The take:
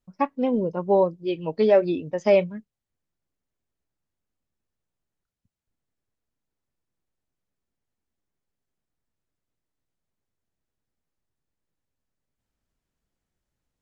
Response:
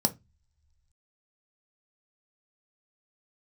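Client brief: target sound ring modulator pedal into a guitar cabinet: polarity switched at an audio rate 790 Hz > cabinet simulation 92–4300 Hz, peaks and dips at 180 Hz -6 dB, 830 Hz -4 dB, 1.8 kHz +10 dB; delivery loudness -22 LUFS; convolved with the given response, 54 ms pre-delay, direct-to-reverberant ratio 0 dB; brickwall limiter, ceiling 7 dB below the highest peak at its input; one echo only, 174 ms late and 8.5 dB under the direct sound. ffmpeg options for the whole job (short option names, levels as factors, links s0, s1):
-filter_complex "[0:a]alimiter=limit=0.2:level=0:latency=1,aecho=1:1:174:0.376,asplit=2[s0][s1];[1:a]atrim=start_sample=2205,adelay=54[s2];[s1][s2]afir=irnorm=-1:irlink=0,volume=0.398[s3];[s0][s3]amix=inputs=2:normalize=0,aeval=exprs='val(0)*sgn(sin(2*PI*790*n/s))':c=same,highpass=92,equalizer=f=180:t=q:w=4:g=-6,equalizer=f=830:t=q:w=4:g=-4,equalizer=f=1800:t=q:w=4:g=10,lowpass=f=4300:w=0.5412,lowpass=f=4300:w=1.3066,volume=0.501"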